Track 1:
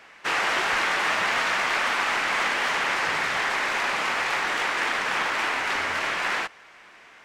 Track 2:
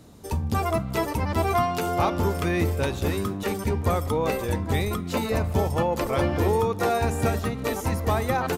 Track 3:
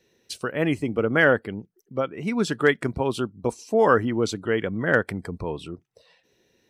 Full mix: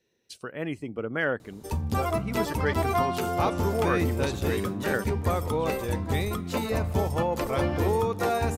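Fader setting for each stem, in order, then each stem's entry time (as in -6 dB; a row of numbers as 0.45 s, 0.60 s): mute, -2.5 dB, -9.0 dB; mute, 1.40 s, 0.00 s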